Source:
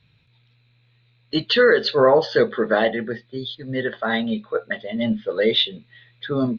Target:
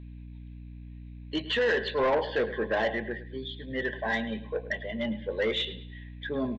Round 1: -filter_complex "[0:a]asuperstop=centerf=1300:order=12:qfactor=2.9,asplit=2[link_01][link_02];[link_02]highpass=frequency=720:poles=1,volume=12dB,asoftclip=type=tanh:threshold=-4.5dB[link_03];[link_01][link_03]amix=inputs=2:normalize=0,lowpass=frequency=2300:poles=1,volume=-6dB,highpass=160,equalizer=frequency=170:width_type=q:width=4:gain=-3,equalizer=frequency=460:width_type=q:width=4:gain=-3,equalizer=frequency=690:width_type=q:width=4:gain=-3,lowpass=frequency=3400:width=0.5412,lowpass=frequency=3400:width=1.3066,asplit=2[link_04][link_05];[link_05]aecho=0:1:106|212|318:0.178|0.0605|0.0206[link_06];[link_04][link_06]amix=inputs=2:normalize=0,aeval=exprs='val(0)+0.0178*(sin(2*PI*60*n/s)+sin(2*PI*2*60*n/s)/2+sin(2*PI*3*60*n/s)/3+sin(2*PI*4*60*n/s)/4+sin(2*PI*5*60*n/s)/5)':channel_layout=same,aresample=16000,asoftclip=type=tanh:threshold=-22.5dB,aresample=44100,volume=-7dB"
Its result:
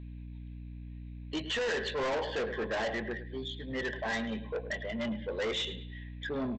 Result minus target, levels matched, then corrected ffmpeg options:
soft clipping: distortion +10 dB
-filter_complex "[0:a]asuperstop=centerf=1300:order=12:qfactor=2.9,asplit=2[link_01][link_02];[link_02]highpass=frequency=720:poles=1,volume=12dB,asoftclip=type=tanh:threshold=-4.5dB[link_03];[link_01][link_03]amix=inputs=2:normalize=0,lowpass=frequency=2300:poles=1,volume=-6dB,highpass=160,equalizer=frequency=170:width_type=q:width=4:gain=-3,equalizer=frequency=460:width_type=q:width=4:gain=-3,equalizer=frequency=690:width_type=q:width=4:gain=-3,lowpass=frequency=3400:width=0.5412,lowpass=frequency=3400:width=1.3066,asplit=2[link_04][link_05];[link_05]aecho=0:1:106|212|318:0.178|0.0605|0.0206[link_06];[link_04][link_06]amix=inputs=2:normalize=0,aeval=exprs='val(0)+0.0178*(sin(2*PI*60*n/s)+sin(2*PI*2*60*n/s)/2+sin(2*PI*3*60*n/s)/3+sin(2*PI*4*60*n/s)/4+sin(2*PI*5*60*n/s)/5)':channel_layout=same,aresample=16000,asoftclip=type=tanh:threshold=-12.5dB,aresample=44100,volume=-7dB"

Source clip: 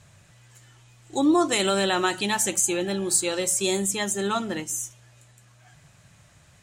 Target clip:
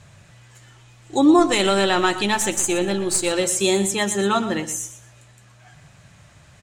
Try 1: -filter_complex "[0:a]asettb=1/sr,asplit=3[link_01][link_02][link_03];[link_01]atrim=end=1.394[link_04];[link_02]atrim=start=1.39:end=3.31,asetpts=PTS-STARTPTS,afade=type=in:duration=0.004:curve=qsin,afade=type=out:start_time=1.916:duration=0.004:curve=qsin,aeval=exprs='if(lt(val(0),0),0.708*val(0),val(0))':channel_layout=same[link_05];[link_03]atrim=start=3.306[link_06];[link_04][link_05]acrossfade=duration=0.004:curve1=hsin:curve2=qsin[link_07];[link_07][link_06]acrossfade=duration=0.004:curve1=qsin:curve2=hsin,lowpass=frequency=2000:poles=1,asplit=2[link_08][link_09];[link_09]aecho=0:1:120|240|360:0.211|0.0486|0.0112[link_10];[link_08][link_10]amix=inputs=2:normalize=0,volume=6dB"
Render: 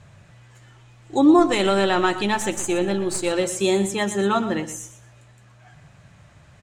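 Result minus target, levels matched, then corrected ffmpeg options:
4,000 Hz band −3.5 dB
-filter_complex "[0:a]asettb=1/sr,asplit=3[link_01][link_02][link_03];[link_01]atrim=end=1.394[link_04];[link_02]atrim=start=1.39:end=3.31,asetpts=PTS-STARTPTS,afade=type=in:duration=0.004:curve=qsin,afade=type=out:start_time=1.916:duration=0.004:curve=qsin,aeval=exprs='if(lt(val(0),0),0.708*val(0),val(0))':channel_layout=same[link_05];[link_03]atrim=start=3.306[link_06];[link_04][link_05]acrossfade=duration=0.004:curve1=hsin:curve2=qsin[link_07];[link_07][link_06]acrossfade=duration=0.004:curve1=qsin:curve2=hsin,lowpass=frequency=5500:poles=1,asplit=2[link_08][link_09];[link_09]aecho=0:1:120|240|360:0.211|0.0486|0.0112[link_10];[link_08][link_10]amix=inputs=2:normalize=0,volume=6dB"

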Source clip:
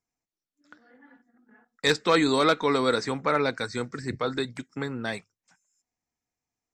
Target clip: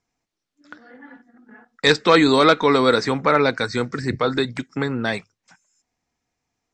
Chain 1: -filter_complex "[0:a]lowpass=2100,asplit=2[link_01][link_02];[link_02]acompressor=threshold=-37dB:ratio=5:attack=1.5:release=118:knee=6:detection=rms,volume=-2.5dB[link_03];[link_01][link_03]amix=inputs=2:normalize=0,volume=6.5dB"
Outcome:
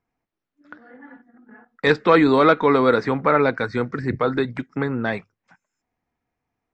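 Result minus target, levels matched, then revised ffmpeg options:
8,000 Hz band −16.5 dB
-filter_complex "[0:a]lowpass=6100,asplit=2[link_01][link_02];[link_02]acompressor=threshold=-37dB:ratio=5:attack=1.5:release=118:knee=6:detection=rms,volume=-2.5dB[link_03];[link_01][link_03]amix=inputs=2:normalize=0,volume=6.5dB"

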